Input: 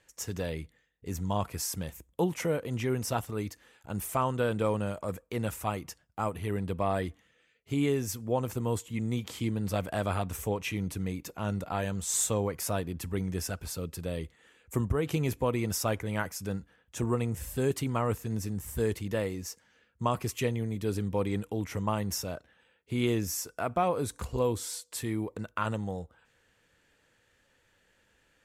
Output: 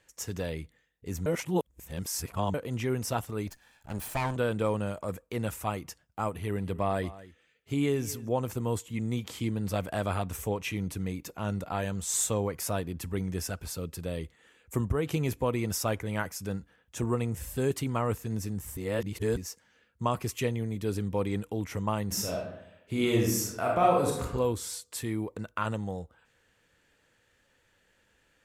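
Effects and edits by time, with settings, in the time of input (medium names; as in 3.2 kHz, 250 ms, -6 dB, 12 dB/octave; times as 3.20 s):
1.26–2.54 s: reverse
3.47–4.36 s: comb filter that takes the minimum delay 1.2 ms
6.34–8.29 s: delay 228 ms -18 dB
18.77–19.37 s: reverse
22.06–24.23 s: reverb throw, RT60 0.83 s, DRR -2 dB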